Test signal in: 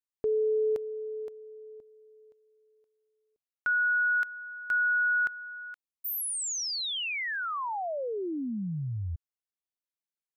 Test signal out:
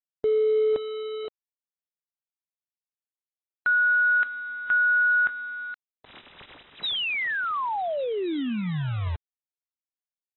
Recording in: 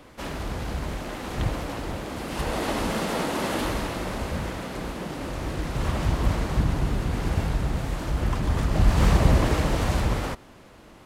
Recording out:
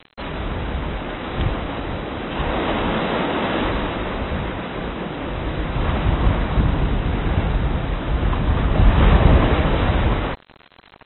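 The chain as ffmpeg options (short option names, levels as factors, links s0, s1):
-af "acrusher=bits=6:mix=0:aa=0.000001,volume=1.78" -ar 24000 -c:a aac -b:a 16k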